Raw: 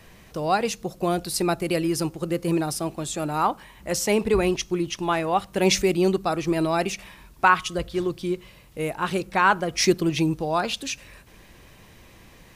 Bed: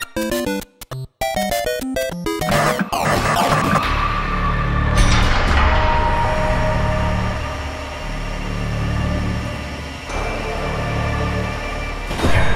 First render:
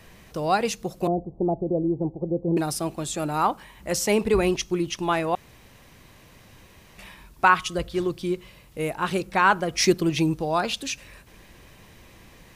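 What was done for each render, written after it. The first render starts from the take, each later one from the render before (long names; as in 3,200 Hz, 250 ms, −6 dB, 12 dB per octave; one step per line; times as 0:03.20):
0:01.07–0:02.57: Butterworth low-pass 830 Hz 48 dB per octave
0:05.35–0:06.98: fill with room tone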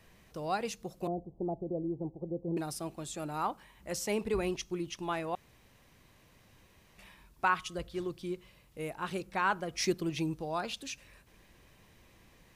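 level −11 dB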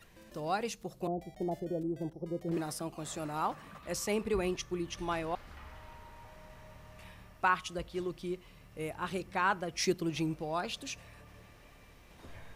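mix in bed −35.5 dB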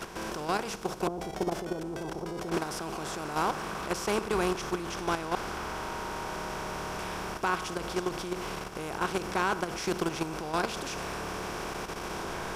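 compressor on every frequency bin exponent 0.4
output level in coarse steps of 9 dB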